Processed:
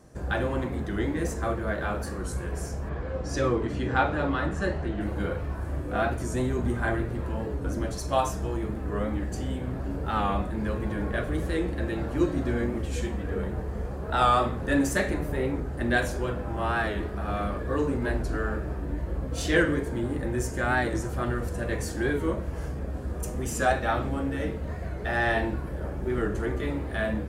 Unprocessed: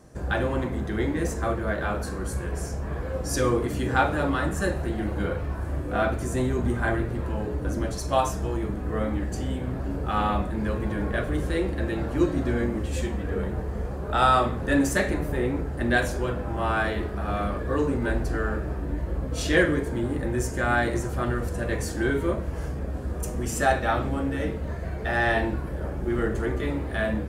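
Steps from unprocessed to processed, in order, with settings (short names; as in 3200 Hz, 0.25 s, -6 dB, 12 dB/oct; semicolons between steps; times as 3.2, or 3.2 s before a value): 2.89–5.01 LPF 4900 Hz 12 dB/oct; record warp 45 rpm, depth 100 cents; gain -2 dB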